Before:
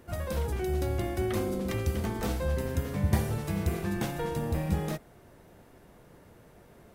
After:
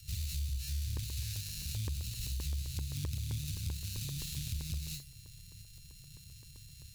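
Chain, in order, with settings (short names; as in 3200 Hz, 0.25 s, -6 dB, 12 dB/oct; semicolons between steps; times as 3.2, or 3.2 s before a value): sample sorter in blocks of 32 samples; EQ curve 150 Hz 0 dB, 930 Hz -29 dB, 4400 Hz +2 dB; on a send: flutter echo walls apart 4.9 m, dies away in 0.24 s; on the sum: compressor 16:1, threshold -36 dBFS, peak gain reduction 17.5 dB; bell 13000 Hz +6 dB 0.22 oct; in parallel at +2.5 dB: limiter -34 dBFS, peak gain reduction 11.5 dB; on the sum: inverse Chebyshev band-stop 250–1000 Hz, stop band 40 dB; crackling interface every 0.13 s, samples 64, zero, from 0.97; Doppler distortion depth 0.46 ms; gain -2 dB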